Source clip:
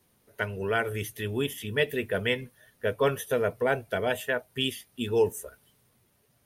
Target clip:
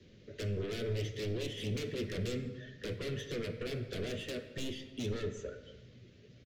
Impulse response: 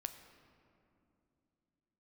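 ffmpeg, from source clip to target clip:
-filter_complex "[0:a]acrossover=split=390|950[link_01][link_02][link_03];[link_01]acompressor=threshold=-33dB:ratio=4[link_04];[link_02]acompressor=threshold=-40dB:ratio=4[link_05];[link_03]acompressor=threshold=-35dB:ratio=4[link_06];[link_04][link_05][link_06]amix=inputs=3:normalize=0,lowpass=3500,acompressor=threshold=-51dB:ratio=1.5,aresample=16000,aeval=exprs='0.0398*sin(PI/2*3.98*val(0)/0.0398)':channel_layout=same,aresample=44100,bandreject=frequency=65.37:width_type=h:width=4,bandreject=frequency=130.74:width_type=h:width=4,bandreject=frequency=196.11:width_type=h:width=4,bandreject=frequency=261.48:width_type=h:width=4,bandreject=frequency=326.85:width_type=h:width=4,bandreject=frequency=392.22:width_type=h:width=4,bandreject=frequency=457.59:width_type=h:width=4,bandreject=frequency=522.96:width_type=h:width=4,bandreject=frequency=588.33:width_type=h:width=4,bandreject=frequency=653.7:width_type=h:width=4,bandreject=frequency=719.07:width_type=h:width=4,bandreject=frequency=784.44:width_type=h:width=4,bandreject=frequency=849.81:width_type=h:width=4,bandreject=frequency=915.18:width_type=h:width=4,bandreject=frequency=980.55:width_type=h:width=4,bandreject=frequency=1045.92:width_type=h:width=4,bandreject=frequency=1111.29:width_type=h:width=4,bandreject=frequency=1176.66:width_type=h:width=4,bandreject=frequency=1242.03:width_type=h:width=4,bandreject=frequency=1307.4:width_type=h:width=4,bandreject=frequency=1372.77:width_type=h:width=4,bandreject=frequency=1438.14:width_type=h:width=4,bandreject=frequency=1503.51:width_type=h:width=4,bandreject=frequency=1568.88:width_type=h:width=4,bandreject=frequency=1634.25:width_type=h:width=4,bandreject=frequency=1699.62:width_type=h:width=4,bandreject=frequency=1764.99:width_type=h:width=4,bandreject=frequency=1830.36:width_type=h:width=4,bandreject=frequency=1895.73:width_type=h:width=4,bandreject=frequency=1961.1:width_type=h:width=4,bandreject=frequency=2026.47:width_type=h:width=4,bandreject=frequency=2091.84:width_type=h:width=4,bandreject=frequency=2157.21:width_type=h:width=4,bandreject=frequency=2222.58:width_type=h:width=4,bandreject=frequency=2287.95:width_type=h:width=4,bandreject=frequency=2353.32:width_type=h:width=4,bandreject=frequency=2418.69:width_type=h:width=4,bandreject=frequency=2484.06:width_type=h:width=4,bandreject=frequency=2549.43:width_type=h:width=4,acrossover=split=1800[link_07][link_08];[link_07]asuperstop=centerf=1200:order=8:qfactor=0.6[link_09];[link_08]asoftclip=type=tanh:threshold=-35dB[link_10];[link_09][link_10]amix=inputs=2:normalize=0[link_11];[1:a]atrim=start_sample=2205,afade=type=out:start_time=0.36:duration=0.01,atrim=end_sample=16317[link_12];[link_11][link_12]afir=irnorm=-1:irlink=0" -ar 44100 -c:a libmp3lame -b:a 96k

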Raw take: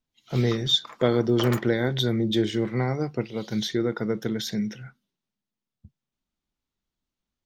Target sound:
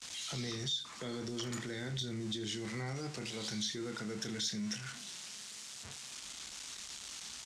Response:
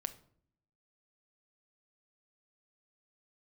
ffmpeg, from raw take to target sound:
-filter_complex "[0:a]aeval=exprs='val(0)+0.5*0.0168*sgn(val(0))':channel_layout=same,lowpass=frequency=8200:width=0.5412,lowpass=frequency=8200:width=1.3066,agate=range=-33dB:threshold=-38dB:ratio=3:detection=peak,highpass=49,tiltshelf=frequency=770:gain=-10,acrossover=split=300[link_01][link_02];[link_02]acompressor=threshold=-44dB:ratio=2.5[link_03];[link_01][link_03]amix=inputs=2:normalize=0,aecho=1:1:29|80:0.335|0.141,acrossover=split=5200[link_04][link_05];[link_04]alimiter=level_in=7dB:limit=-24dB:level=0:latency=1:release=13,volume=-7dB[link_06];[link_05]acontrast=74[link_07];[link_06][link_07]amix=inputs=2:normalize=0,volume=-2dB"

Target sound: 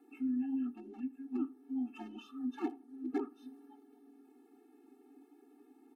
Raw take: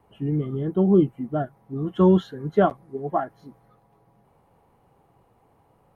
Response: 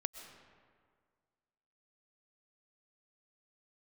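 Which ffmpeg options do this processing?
-filter_complex "[0:a]highpass=58,equalizer=frequency=120:width_type=o:width=0.94:gain=4.5,acompressor=threshold=-37dB:ratio=2,acrossover=split=310|1500[link_01][link_02][link_03];[link_02]asoftclip=type=hard:threshold=-29dB[link_04];[link_01][link_04][link_03]amix=inputs=3:normalize=0,afreqshift=-400,asplit=2[link_05][link_06];[link_06]adelay=81,lowpass=frequency=1900:poles=1,volume=-21dB,asplit=2[link_07][link_08];[link_08]adelay=81,lowpass=frequency=1900:poles=1,volume=0.33[link_09];[link_07][link_09]amix=inputs=2:normalize=0[link_10];[link_05][link_10]amix=inputs=2:normalize=0,afftfilt=real='re*eq(mod(floor(b*sr/1024/230),2),1)':imag='im*eq(mod(floor(b*sr/1024/230),2),1)':win_size=1024:overlap=0.75,volume=1dB"

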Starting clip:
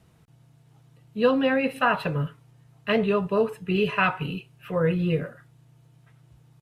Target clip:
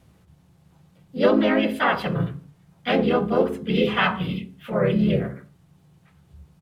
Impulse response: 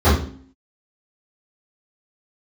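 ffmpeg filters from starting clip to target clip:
-filter_complex "[0:a]asplit=4[link_01][link_02][link_03][link_04];[link_02]asetrate=35002,aresample=44100,atempo=1.25992,volume=-5dB[link_05];[link_03]asetrate=52444,aresample=44100,atempo=0.840896,volume=-1dB[link_06];[link_04]asetrate=55563,aresample=44100,atempo=0.793701,volume=-10dB[link_07];[link_01][link_05][link_06][link_07]amix=inputs=4:normalize=0,asplit=2[link_08][link_09];[1:a]atrim=start_sample=2205,afade=type=out:start_time=0.33:duration=0.01,atrim=end_sample=14994[link_10];[link_09][link_10]afir=irnorm=-1:irlink=0,volume=-35dB[link_11];[link_08][link_11]amix=inputs=2:normalize=0,volume=-2dB"

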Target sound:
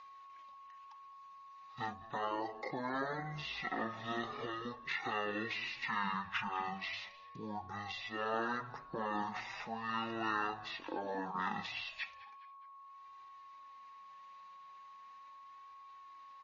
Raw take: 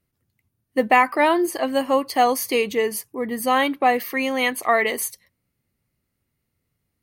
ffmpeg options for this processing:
ffmpeg -i in.wav -filter_complex "[0:a]asetrate=18846,aresample=44100,flanger=delay=2.5:depth=3:regen=33:speed=0.38:shape=sinusoidal,agate=range=-33dB:threshold=-50dB:ratio=3:detection=peak,acompressor=mode=upward:threshold=-23dB:ratio=2.5,aeval=exprs='val(0)+0.00251*sin(2*PI*1100*n/s)':channel_layout=same,aderivative,acompressor=threshold=-44dB:ratio=3,afftfilt=real='re*lt(hypot(re,im),0.02)':imag='im*lt(hypot(re,im),0.02)':win_size=1024:overlap=0.75,lowpass=frequency=2700:width=0.5412,lowpass=frequency=2700:width=1.3066,lowshelf=frequency=120:gain=-5.5,asplit=2[link_01][link_02];[link_02]asplit=3[link_03][link_04][link_05];[link_03]adelay=207,afreqshift=-93,volume=-19dB[link_06];[link_04]adelay=414,afreqshift=-186,volume=-26.5dB[link_07];[link_05]adelay=621,afreqshift=-279,volume=-34.1dB[link_08];[link_06][link_07][link_08]amix=inputs=3:normalize=0[link_09];[link_01][link_09]amix=inputs=2:normalize=0,volume=16dB" out.wav

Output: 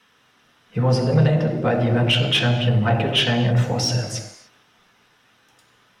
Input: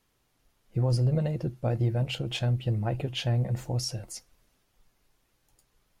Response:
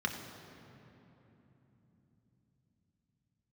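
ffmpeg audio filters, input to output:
-filter_complex "[1:a]atrim=start_sample=2205,afade=type=out:start_time=0.35:duration=0.01,atrim=end_sample=15876[link_01];[0:a][link_01]afir=irnorm=-1:irlink=0,asplit=2[link_02][link_03];[link_03]highpass=frequency=720:poles=1,volume=20dB,asoftclip=type=tanh:threshold=-5.5dB[link_04];[link_02][link_04]amix=inputs=2:normalize=0,lowpass=frequency=4000:poles=1,volume=-6dB"

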